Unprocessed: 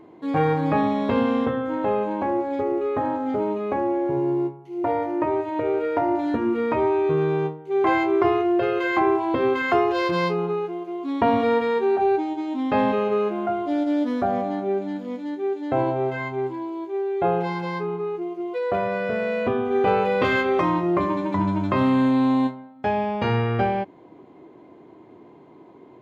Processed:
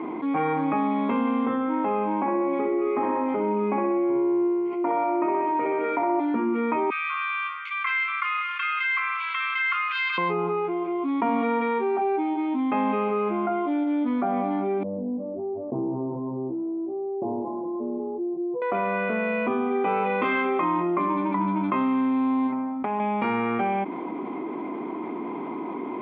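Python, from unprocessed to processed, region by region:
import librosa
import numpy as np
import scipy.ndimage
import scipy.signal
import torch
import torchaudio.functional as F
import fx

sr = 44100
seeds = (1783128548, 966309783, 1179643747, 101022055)

y = fx.chain(x, sr, fx.notch(hz=3500.0, q=13.0),
    fx.room_flutter(wall_m=10.8, rt60_s=1.0), at=(2.2, 6.2))
y = fx.chain(y, sr, fx.cheby1_highpass(hz=1100.0, order=10),
    fx.tilt_eq(slope=3.5), at=(6.9, 10.18))
y = fx.chain(y, sr, fx.lower_of_two(delay_ms=8.6),
    fx.gaussian_blur(sigma=17.0),
    fx.comb(ms=2.0, depth=0.39), at=(14.83, 18.62))
y = fx.chain(y, sr, fx.high_shelf(hz=2100.0, db=-9.0),
    fx.over_compress(threshold_db=-29.0, ratio=-1.0),
    fx.doppler_dist(depth_ms=0.19), at=(22.52, 23.0))
y = scipy.signal.sosfilt(scipy.signal.cheby1(3, 1.0, [220.0, 2700.0], 'bandpass', fs=sr, output='sos'), y)
y = y + 0.5 * np.pad(y, (int(0.9 * sr / 1000.0), 0))[:len(y)]
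y = fx.env_flatten(y, sr, amount_pct=70)
y = y * 10.0 ** (-6.5 / 20.0)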